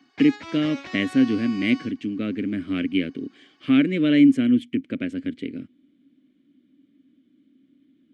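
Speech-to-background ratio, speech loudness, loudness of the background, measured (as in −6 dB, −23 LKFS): 16.5 dB, −22.5 LKFS, −39.0 LKFS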